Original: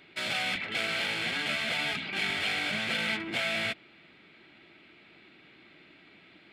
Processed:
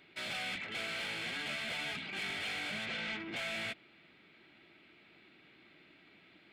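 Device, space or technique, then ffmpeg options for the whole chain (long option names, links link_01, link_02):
saturation between pre-emphasis and de-emphasis: -filter_complex "[0:a]highshelf=frequency=10000:gain=7,asoftclip=type=tanh:threshold=-27dB,highshelf=frequency=10000:gain=-7,asplit=3[link_01][link_02][link_03];[link_01]afade=type=out:start_time=2.85:duration=0.02[link_04];[link_02]lowpass=5200,afade=type=in:start_time=2.85:duration=0.02,afade=type=out:start_time=3.35:duration=0.02[link_05];[link_03]afade=type=in:start_time=3.35:duration=0.02[link_06];[link_04][link_05][link_06]amix=inputs=3:normalize=0,volume=-5.5dB"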